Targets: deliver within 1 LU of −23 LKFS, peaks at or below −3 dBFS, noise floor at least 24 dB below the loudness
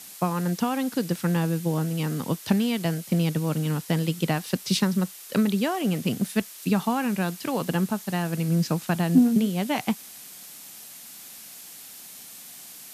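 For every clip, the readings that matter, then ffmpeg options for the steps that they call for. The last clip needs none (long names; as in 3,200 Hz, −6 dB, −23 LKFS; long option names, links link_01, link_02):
background noise floor −44 dBFS; target noise floor −50 dBFS; integrated loudness −25.5 LKFS; sample peak −7.5 dBFS; target loudness −23.0 LKFS
→ -af "afftdn=noise_reduction=6:noise_floor=-44"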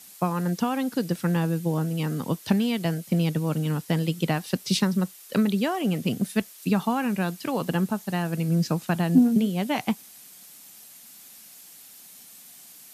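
background noise floor −48 dBFS; target noise floor −50 dBFS
→ -af "afftdn=noise_reduction=6:noise_floor=-48"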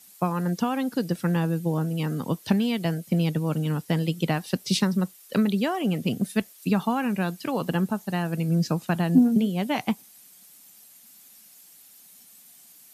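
background noise floor −52 dBFS; integrated loudness −25.5 LKFS; sample peak −8.0 dBFS; target loudness −23.0 LKFS
→ -af "volume=2.5dB"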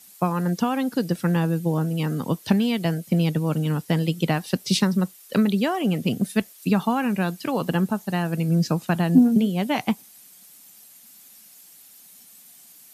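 integrated loudness −23.0 LKFS; sample peak −5.5 dBFS; background noise floor −50 dBFS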